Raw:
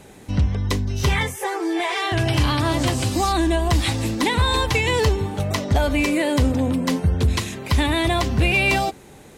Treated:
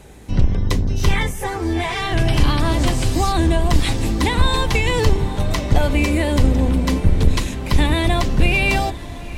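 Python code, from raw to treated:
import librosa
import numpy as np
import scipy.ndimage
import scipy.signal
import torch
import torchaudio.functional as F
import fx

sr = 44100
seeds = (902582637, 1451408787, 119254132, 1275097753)

y = fx.octave_divider(x, sr, octaves=2, level_db=4.0)
y = fx.echo_diffused(y, sr, ms=953, feedback_pct=60, wet_db=-16)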